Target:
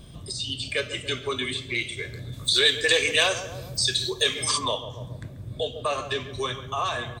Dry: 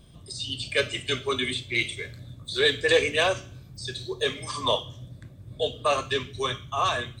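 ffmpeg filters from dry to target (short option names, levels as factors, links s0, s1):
-filter_complex "[0:a]asplit=2[s0][s1];[s1]adelay=138,lowpass=f=980:p=1,volume=0.251,asplit=2[s2][s3];[s3]adelay=138,lowpass=f=980:p=1,volume=0.49,asplit=2[s4][s5];[s5]adelay=138,lowpass=f=980:p=1,volume=0.49,asplit=2[s6][s7];[s7]adelay=138,lowpass=f=980:p=1,volume=0.49,asplit=2[s8][s9];[s9]adelay=138,lowpass=f=980:p=1,volume=0.49[s10];[s0][s2][s4][s6][s8][s10]amix=inputs=6:normalize=0,acompressor=threshold=0.0112:ratio=2,asplit=3[s11][s12][s13];[s11]afade=t=out:st=2.32:d=0.02[s14];[s12]highshelf=f=2000:g=12,afade=t=in:st=2.32:d=0.02,afade=t=out:st=4.57:d=0.02[s15];[s13]afade=t=in:st=4.57:d=0.02[s16];[s14][s15][s16]amix=inputs=3:normalize=0,volume=2.24"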